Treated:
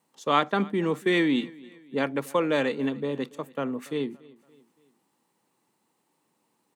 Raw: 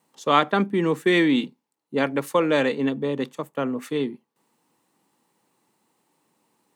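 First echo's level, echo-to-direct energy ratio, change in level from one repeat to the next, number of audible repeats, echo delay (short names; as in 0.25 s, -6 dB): -23.0 dB, -22.0 dB, -6.5 dB, 2, 0.284 s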